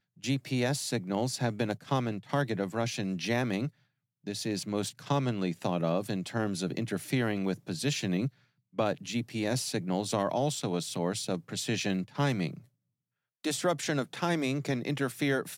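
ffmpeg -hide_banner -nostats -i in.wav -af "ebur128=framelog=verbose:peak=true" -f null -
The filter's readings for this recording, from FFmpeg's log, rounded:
Integrated loudness:
  I:         -31.8 LUFS
  Threshold: -41.9 LUFS
Loudness range:
  LRA:         1.4 LU
  Threshold: -52.2 LUFS
  LRA low:   -32.9 LUFS
  LRA high:  -31.5 LUFS
True peak:
  Peak:      -15.1 dBFS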